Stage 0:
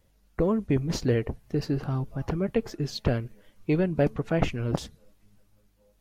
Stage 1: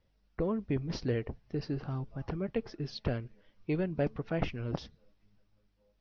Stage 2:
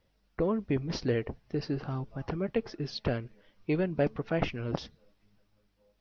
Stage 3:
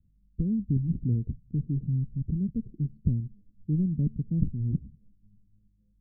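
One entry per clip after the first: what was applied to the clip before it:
elliptic low-pass 5500 Hz, stop band 40 dB; gain -6.5 dB
low shelf 160 Hz -6 dB; gain +4.5 dB
inverse Chebyshev low-pass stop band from 940 Hz, stop band 70 dB; gain +8.5 dB

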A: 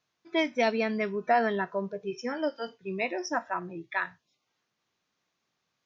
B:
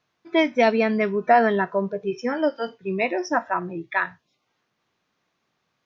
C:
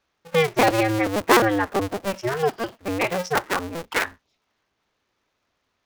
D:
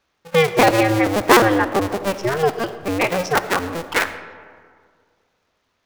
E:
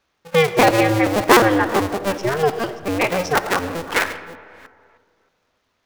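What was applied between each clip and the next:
high shelf 4500 Hz -11 dB; gain +8 dB
cycle switcher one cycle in 2, inverted
reverb RT60 2.0 s, pre-delay 30 ms, DRR 12 dB; gain +4 dB
reverse delay 0.311 s, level -14 dB

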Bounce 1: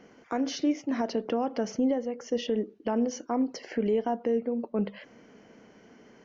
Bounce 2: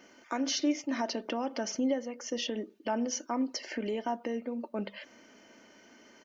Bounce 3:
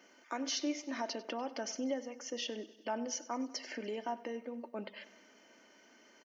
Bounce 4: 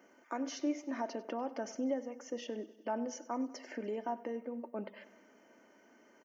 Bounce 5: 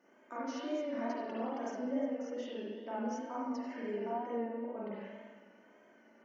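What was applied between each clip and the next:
tilt +2.5 dB/oct; comb 3.3 ms, depth 48%; gain -1.5 dB
HPF 320 Hz 6 dB/oct; feedback echo 97 ms, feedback 60%, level -18 dB; gain -4 dB
bell 4100 Hz -15 dB 1.7 oct; gain +2 dB
spring tank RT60 1.5 s, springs 39/56 ms, chirp 35 ms, DRR -8 dB; wow and flutter 53 cents; gain -8 dB

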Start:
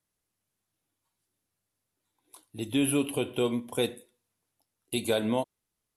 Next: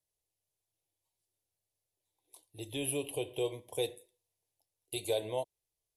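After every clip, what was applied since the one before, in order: fixed phaser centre 560 Hz, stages 4; gain -4 dB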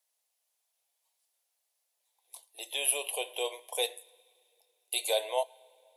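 inverse Chebyshev high-pass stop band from 180 Hz, stop band 60 dB; two-slope reverb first 0.23 s, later 2.7 s, from -18 dB, DRR 16.5 dB; gain +8.5 dB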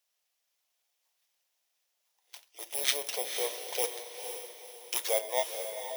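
FFT order left unsorted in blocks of 16 samples; diffused feedback echo 0.495 s, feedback 41%, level -7 dB

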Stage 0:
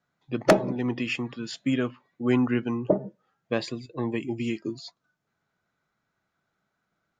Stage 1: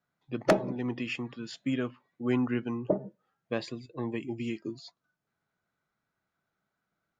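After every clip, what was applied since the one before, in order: high shelf 6400 Hz -4 dB; gain -5 dB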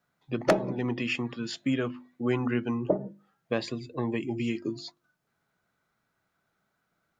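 notches 50/100/150/200/250/300/350 Hz; compressor 1.5:1, threshold -35 dBFS, peak gain reduction 6.5 dB; gain +6.5 dB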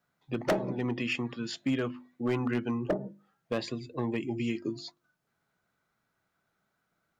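hard clip -20.5 dBFS, distortion -14 dB; gain -1.5 dB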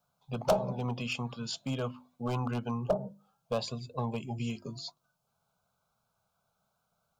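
fixed phaser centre 780 Hz, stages 4; gain +4 dB

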